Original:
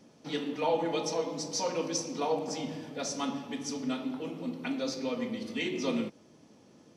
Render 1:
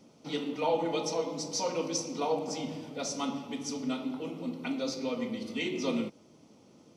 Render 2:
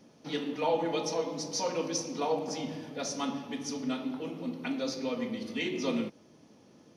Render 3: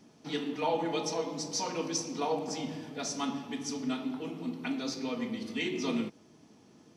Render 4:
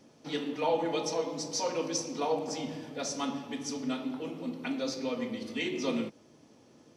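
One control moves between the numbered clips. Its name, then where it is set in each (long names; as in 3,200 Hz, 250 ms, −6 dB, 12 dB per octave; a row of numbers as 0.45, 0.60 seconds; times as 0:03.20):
notch filter, centre frequency: 1,700, 7,700, 540, 190 Hertz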